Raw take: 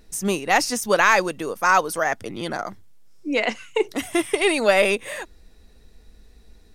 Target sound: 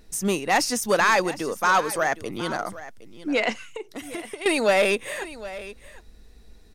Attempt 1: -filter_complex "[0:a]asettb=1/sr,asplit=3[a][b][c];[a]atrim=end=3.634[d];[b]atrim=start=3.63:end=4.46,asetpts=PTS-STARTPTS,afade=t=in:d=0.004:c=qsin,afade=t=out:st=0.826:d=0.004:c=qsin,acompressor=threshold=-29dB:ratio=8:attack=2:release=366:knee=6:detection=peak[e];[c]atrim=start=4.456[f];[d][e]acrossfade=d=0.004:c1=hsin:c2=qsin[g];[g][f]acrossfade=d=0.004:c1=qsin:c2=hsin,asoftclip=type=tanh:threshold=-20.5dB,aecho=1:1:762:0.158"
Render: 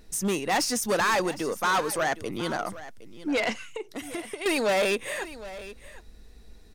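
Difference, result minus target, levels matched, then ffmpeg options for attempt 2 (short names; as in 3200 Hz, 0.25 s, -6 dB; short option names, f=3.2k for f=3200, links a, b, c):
soft clip: distortion +7 dB
-filter_complex "[0:a]asettb=1/sr,asplit=3[a][b][c];[a]atrim=end=3.634[d];[b]atrim=start=3.63:end=4.46,asetpts=PTS-STARTPTS,afade=t=in:d=0.004:c=qsin,afade=t=out:st=0.826:d=0.004:c=qsin,acompressor=threshold=-29dB:ratio=8:attack=2:release=366:knee=6:detection=peak[e];[c]atrim=start=4.456[f];[d][e]acrossfade=d=0.004:c1=hsin:c2=qsin[g];[g][f]acrossfade=d=0.004:c1=qsin:c2=hsin,asoftclip=type=tanh:threshold=-12dB,aecho=1:1:762:0.158"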